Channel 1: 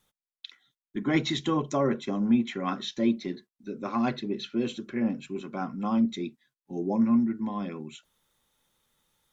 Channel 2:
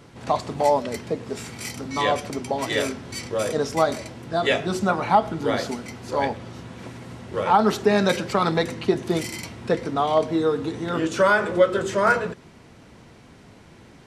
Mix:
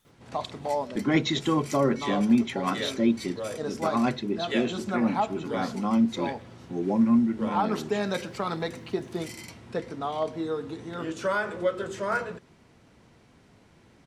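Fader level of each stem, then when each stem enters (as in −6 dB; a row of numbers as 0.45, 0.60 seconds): +2.0, −9.0 decibels; 0.00, 0.05 seconds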